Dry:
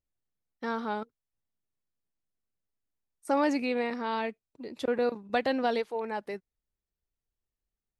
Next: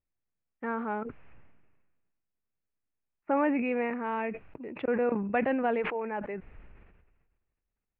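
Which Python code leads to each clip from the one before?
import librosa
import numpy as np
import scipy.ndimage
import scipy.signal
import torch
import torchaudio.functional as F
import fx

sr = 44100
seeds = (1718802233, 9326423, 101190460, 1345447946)

y = scipy.signal.sosfilt(scipy.signal.cheby1(5, 1.0, 2600.0, 'lowpass', fs=sr, output='sos'), x)
y = fx.sustainer(y, sr, db_per_s=40.0)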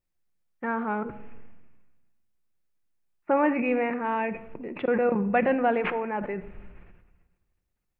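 y = fx.room_shoebox(x, sr, seeds[0], volume_m3=2900.0, walls='furnished', distance_m=0.91)
y = y * librosa.db_to_amplitude(4.0)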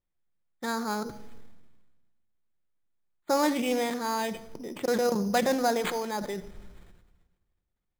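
y = np.repeat(scipy.signal.resample_poly(x, 1, 8), 8)[:len(x)]
y = fx.doppler_dist(y, sr, depth_ms=0.12)
y = y * librosa.db_to_amplitude(-2.0)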